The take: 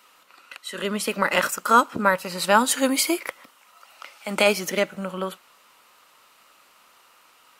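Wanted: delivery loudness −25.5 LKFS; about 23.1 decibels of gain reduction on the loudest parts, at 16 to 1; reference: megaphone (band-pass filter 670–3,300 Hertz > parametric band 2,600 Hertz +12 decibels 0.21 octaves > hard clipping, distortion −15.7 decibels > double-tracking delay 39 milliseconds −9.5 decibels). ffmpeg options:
ffmpeg -i in.wav -filter_complex "[0:a]acompressor=threshold=-34dB:ratio=16,highpass=670,lowpass=3300,equalizer=frequency=2600:width_type=o:width=0.21:gain=12,asoftclip=type=hard:threshold=-29dB,asplit=2[link_01][link_02];[link_02]adelay=39,volume=-9.5dB[link_03];[link_01][link_03]amix=inputs=2:normalize=0,volume=15dB" out.wav

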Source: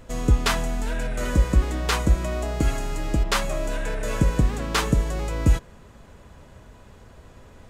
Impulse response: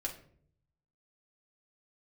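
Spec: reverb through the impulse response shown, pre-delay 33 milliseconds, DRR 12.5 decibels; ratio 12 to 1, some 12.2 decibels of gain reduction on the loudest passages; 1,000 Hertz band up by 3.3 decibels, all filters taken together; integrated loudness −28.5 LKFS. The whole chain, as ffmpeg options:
-filter_complex "[0:a]equalizer=frequency=1000:width_type=o:gain=4,acompressor=threshold=-24dB:ratio=12,asplit=2[link_01][link_02];[1:a]atrim=start_sample=2205,adelay=33[link_03];[link_02][link_03]afir=irnorm=-1:irlink=0,volume=-13.5dB[link_04];[link_01][link_04]amix=inputs=2:normalize=0,volume=2dB"

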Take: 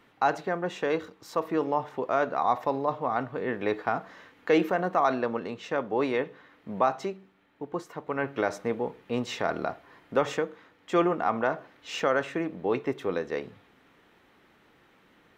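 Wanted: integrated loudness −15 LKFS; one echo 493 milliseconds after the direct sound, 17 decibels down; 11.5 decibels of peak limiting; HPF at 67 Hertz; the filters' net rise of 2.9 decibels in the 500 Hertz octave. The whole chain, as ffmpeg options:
ffmpeg -i in.wav -af "highpass=67,equalizer=frequency=500:width_type=o:gain=3.5,alimiter=limit=-20.5dB:level=0:latency=1,aecho=1:1:493:0.141,volume=17.5dB" out.wav

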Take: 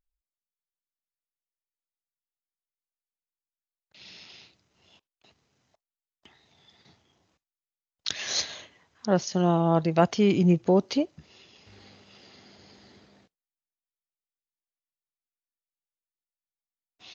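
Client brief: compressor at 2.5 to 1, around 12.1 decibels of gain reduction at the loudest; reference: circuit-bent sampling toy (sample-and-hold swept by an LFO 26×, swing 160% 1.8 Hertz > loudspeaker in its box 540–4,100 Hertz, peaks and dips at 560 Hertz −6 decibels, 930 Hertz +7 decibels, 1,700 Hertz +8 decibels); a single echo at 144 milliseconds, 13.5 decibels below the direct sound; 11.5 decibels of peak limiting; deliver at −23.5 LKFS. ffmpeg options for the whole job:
ffmpeg -i in.wav -af "acompressor=threshold=-35dB:ratio=2.5,alimiter=level_in=4.5dB:limit=-24dB:level=0:latency=1,volume=-4.5dB,aecho=1:1:144:0.211,acrusher=samples=26:mix=1:aa=0.000001:lfo=1:lforange=41.6:lforate=1.8,highpass=540,equalizer=frequency=560:width_type=q:width=4:gain=-6,equalizer=frequency=930:width_type=q:width=4:gain=7,equalizer=frequency=1700:width_type=q:width=4:gain=8,lowpass=frequency=4100:width=0.5412,lowpass=frequency=4100:width=1.3066,volume=22dB" out.wav

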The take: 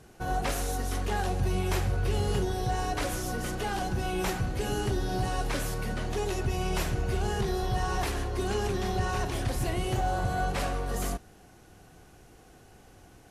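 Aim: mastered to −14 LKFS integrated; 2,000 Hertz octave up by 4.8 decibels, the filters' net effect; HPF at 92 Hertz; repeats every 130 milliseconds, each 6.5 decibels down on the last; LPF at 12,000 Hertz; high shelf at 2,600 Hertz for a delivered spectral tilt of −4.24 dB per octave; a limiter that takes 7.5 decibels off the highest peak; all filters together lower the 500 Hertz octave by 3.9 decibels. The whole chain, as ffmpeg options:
ffmpeg -i in.wav -af "highpass=92,lowpass=12000,equalizer=frequency=500:width_type=o:gain=-6,equalizer=frequency=2000:width_type=o:gain=3.5,highshelf=frequency=2600:gain=8,alimiter=limit=-23dB:level=0:latency=1,aecho=1:1:130|260|390|520|650|780:0.473|0.222|0.105|0.0491|0.0231|0.0109,volume=17dB" out.wav

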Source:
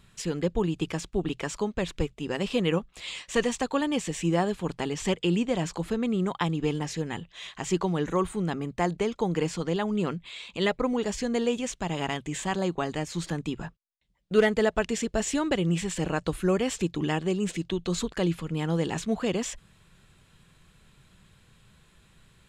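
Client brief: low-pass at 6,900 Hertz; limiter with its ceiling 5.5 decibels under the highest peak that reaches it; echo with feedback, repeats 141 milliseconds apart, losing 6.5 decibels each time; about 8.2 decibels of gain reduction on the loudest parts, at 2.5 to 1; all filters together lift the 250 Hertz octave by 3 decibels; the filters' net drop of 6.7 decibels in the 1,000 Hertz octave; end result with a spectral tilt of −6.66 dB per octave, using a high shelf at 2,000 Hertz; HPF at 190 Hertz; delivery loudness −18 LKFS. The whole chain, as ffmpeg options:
ffmpeg -i in.wav -af "highpass=190,lowpass=6900,equalizer=frequency=250:width_type=o:gain=7,equalizer=frequency=1000:width_type=o:gain=-8,highshelf=frequency=2000:gain=-7.5,acompressor=threshold=-27dB:ratio=2.5,alimiter=limit=-22.5dB:level=0:latency=1,aecho=1:1:141|282|423|564|705|846:0.473|0.222|0.105|0.0491|0.0231|0.0109,volume=13.5dB" out.wav

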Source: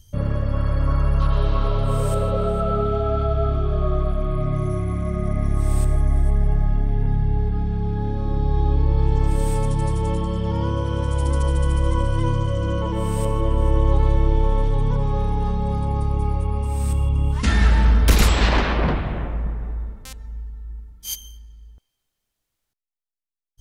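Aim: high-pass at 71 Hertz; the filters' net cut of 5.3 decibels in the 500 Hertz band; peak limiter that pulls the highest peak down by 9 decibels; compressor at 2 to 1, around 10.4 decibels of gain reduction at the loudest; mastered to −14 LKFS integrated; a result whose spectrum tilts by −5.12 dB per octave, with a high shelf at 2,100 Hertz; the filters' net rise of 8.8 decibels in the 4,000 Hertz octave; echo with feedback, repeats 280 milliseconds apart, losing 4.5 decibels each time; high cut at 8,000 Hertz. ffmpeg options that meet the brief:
ffmpeg -i in.wav -af "highpass=71,lowpass=8000,equalizer=frequency=500:width_type=o:gain=-7.5,highshelf=frequency=2100:gain=9,equalizer=frequency=4000:width_type=o:gain=3,acompressor=threshold=-31dB:ratio=2,alimiter=limit=-21dB:level=0:latency=1,aecho=1:1:280|560|840|1120|1400|1680|1960|2240|2520:0.596|0.357|0.214|0.129|0.0772|0.0463|0.0278|0.0167|0.01,volume=16.5dB" out.wav

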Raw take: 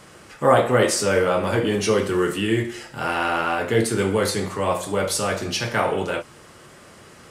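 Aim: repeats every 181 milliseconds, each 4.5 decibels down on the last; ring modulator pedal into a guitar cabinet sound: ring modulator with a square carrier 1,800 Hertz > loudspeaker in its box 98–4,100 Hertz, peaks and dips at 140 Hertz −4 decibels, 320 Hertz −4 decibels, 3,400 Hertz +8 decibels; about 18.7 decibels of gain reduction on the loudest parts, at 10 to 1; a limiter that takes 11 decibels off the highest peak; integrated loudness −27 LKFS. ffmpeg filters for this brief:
ffmpeg -i in.wav -af "acompressor=threshold=-31dB:ratio=10,alimiter=level_in=4dB:limit=-24dB:level=0:latency=1,volume=-4dB,aecho=1:1:181|362|543|724|905|1086|1267|1448|1629:0.596|0.357|0.214|0.129|0.0772|0.0463|0.0278|0.0167|0.01,aeval=exprs='val(0)*sgn(sin(2*PI*1800*n/s))':channel_layout=same,highpass=98,equalizer=frequency=140:width_type=q:width=4:gain=-4,equalizer=frequency=320:width_type=q:width=4:gain=-4,equalizer=frequency=3400:width_type=q:width=4:gain=8,lowpass=frequency=4100:width=0.5412,lowpass=frequency=4100:width=1.3066,volume=7dB" out.wav

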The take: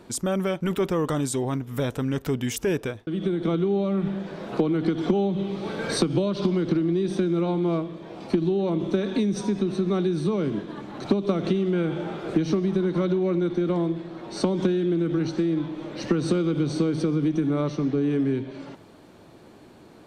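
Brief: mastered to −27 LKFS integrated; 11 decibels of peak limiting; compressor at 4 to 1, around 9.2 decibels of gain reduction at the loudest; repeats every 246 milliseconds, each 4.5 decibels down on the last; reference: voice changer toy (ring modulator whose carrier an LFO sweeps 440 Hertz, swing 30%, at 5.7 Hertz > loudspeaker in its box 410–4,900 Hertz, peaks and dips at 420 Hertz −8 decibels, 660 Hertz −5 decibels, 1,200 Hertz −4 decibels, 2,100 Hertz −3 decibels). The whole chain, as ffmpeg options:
ffmpeg -i in.wav -af "acompressor=threshold=-29dB:ratio=4,alimiter=level_in=3.5dB:limit=-24dB:level=0:latency=1,volume=-3.5dB,aecho=1:1:246|492|738|984|1230|1476|1722|1968|2214:0.596|0.357|0.214|0.129|0.0772|0.0463|0.0278|0.0167|0.01,aeval=exprs='val(0)*sin(2*PI*440*n/s+440*0.3/5.7*sin(2*PI*5.7*n/s))':channel_layout=same,highpass=410,equalizer=frequency=420:width_type=q:width=4:gain=-8,equalizer=frequency=660:width_type=q:width=4:gain=-5,equalizer=frequency=1200:width_type=q:width=4:gain=-4,equalizer=frequency=2100:width_type=q:width=4:gain=-3,lowpass=frequency=4900:width=0.5412,lowpass=frequency=4900:width=1.3066,volume=15dB" out.wav

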